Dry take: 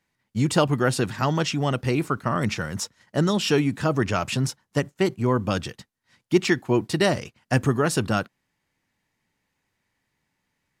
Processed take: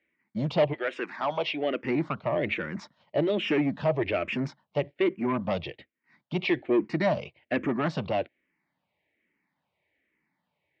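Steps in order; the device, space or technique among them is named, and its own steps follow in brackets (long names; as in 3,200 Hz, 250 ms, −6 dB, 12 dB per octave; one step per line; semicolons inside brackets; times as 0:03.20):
0:00.72–0:01.83: high-pass filter 800 Hz → 230 Hz 12 dB per octave
barber-pole phaser into a guitar amplifier (frequency shifter mixed with the dry sound −1.2 Hz; soft clipping −21.5 dBFS, distortion −12 dB; loudspeaker in its box 94–3,500 Hz, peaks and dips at 110 Hz −10 dB, 330 Hz +5 dB, 610 Hz +7 dB, 1,400 Hz −4 dB, 2,200 Hz +7 dB)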